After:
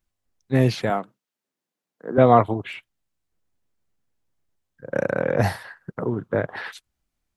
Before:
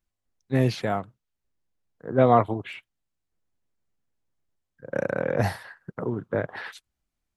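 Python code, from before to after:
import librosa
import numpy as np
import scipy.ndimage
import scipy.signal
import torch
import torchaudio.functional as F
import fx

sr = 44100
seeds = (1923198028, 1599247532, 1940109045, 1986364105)

y = fx.highpass(x, sr, hz=190.0, slope=24, at=(0.9, 2.18))
y = y * librosa.db_to_amplitude(3.5)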